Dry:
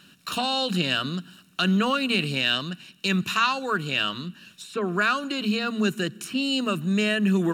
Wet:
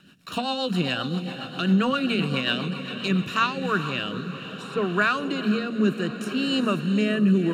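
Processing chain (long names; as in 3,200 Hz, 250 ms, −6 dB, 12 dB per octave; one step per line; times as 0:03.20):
high-shelf EQ 3,000 Hz −8.5 dB
feedback delay with all-pass diffusion 462 ms, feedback 61%, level −9.5 dB
rotating-speaker cabinet horn 7.5 Hz, later 0.65 Hz, at 0:02.93
level +3 dB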